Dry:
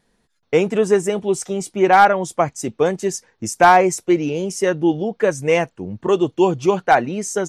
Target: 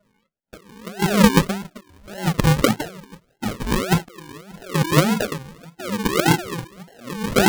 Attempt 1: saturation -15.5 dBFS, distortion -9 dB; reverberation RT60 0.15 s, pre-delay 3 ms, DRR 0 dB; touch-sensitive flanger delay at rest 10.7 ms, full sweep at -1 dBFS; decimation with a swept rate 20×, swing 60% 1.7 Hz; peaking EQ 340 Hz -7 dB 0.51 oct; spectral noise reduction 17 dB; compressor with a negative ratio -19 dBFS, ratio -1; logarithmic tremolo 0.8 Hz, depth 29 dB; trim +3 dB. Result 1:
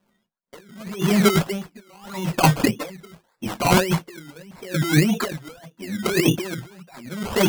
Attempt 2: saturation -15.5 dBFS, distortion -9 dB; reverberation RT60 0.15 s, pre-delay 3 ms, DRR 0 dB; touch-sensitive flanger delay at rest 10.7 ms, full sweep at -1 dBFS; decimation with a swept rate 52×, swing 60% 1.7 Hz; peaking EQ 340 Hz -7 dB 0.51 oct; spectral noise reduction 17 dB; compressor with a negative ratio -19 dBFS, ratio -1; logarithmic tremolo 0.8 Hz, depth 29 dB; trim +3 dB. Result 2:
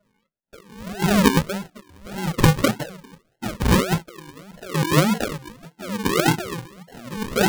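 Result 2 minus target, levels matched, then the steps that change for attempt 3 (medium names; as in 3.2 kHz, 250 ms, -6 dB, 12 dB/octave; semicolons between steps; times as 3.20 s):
saturation: distortion +11 dB
change: saturation -5.5 dBFS, distortion -19 dB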